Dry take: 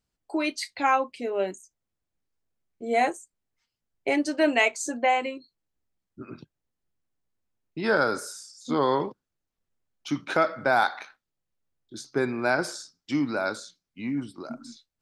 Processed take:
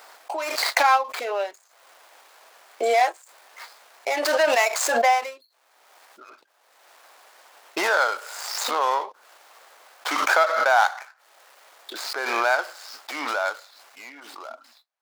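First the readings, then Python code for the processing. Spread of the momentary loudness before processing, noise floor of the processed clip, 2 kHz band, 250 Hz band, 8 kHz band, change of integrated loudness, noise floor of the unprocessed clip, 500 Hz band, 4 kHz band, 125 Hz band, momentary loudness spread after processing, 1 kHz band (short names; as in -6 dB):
19 LU, -63 dBFS, +5.0 dB, -11.5 dB, +7.5 dB, +4.0 dB, -85 dBFS, +2.0 dB, +7.0 dB, under -25 dB, 20 LU, +5.5 dB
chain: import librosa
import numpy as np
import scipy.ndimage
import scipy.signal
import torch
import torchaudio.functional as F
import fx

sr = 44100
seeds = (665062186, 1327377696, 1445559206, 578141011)

y = scipy.signal.medfilt(x, 15)
y = scipy.signal.sosfilt(scipy.signal.butter(4, 640.0, 'highpass', fs=sr, output='sos'), y)
y = fx.pre_swell(y, sr, db_per_s=33.0)
y = F.gain(torch.from_numpy(y), 5.5).numpy()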